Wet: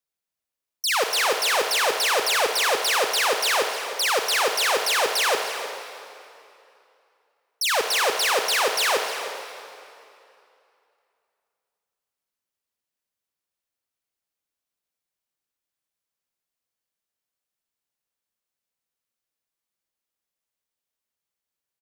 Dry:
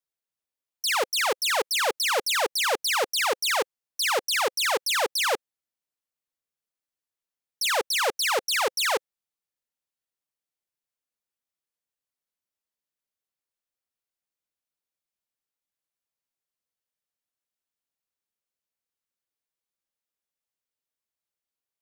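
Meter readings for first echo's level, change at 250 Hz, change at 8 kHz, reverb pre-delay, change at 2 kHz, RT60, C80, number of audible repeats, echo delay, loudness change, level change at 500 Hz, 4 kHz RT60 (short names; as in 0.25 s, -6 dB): -14.0 dB, +3.5 dB, +3.0 dB, 33 ms, +3.5 dB, 2.7 s, 5.0 dB, 1, 0.307 s, +3.0 dB, +3.0 dB, 2.3 s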